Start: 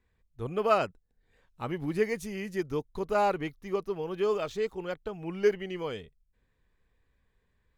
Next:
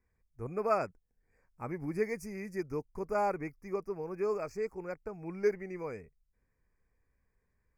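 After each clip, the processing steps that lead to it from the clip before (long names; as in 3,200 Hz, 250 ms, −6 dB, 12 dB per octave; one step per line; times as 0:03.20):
elliptic band-stop filter 2,400–4,800 Hz, stop band 40 dB
level −4.5 dB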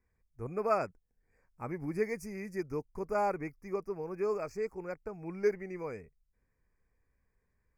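no processing that can be heard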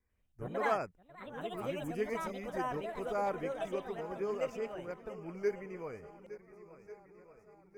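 feedback echo with a long and a short gap by turns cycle 1,442 ms, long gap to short 1.5 to 1, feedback 48%, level −15 dB
delay with pitch and tempo change per echo 93 ms, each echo +4 semitones, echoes 2
pitch vibrato 1.8 Hz 27 cents
level −4 dB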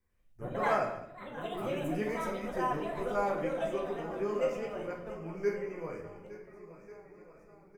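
single-tap delay 209 ms −18 dB
rectangular room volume 120 cubic metres, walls mixed, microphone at 0.87 metres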